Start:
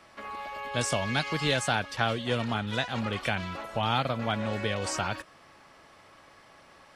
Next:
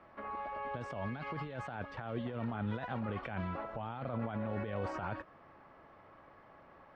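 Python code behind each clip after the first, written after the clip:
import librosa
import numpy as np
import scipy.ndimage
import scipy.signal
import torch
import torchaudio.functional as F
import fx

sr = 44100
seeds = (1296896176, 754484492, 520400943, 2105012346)

y = fx.over_compress(x, sr, threshold_db=-33.0, ratio=-1.0)
y = scipy.signal.sosfilt(scipy.signal.butter(2, 1400.0, 'lowpass', fs=sr, output='sos'), y)
y = F.gain(torch.from_numpy(y), -4.5).numpy()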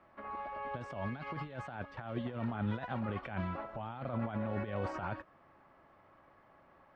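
y = fx.notch(x, sr, hz=460.0, q=12.0)
y = fx.upward_expand(y, sr, threshold_db=-48.0, expansion=1.5)
y = F.gain(torch.from_numpy(y), 2.5).numpy()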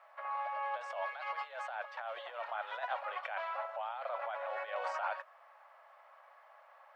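y = scipy.signal.sosfilt(scipy.signal.butter(8, 580.0, 'highpass', fs=sr, output='sos'), x)
y = F.gain(torch.from_numpy(y), 4.5).numpy()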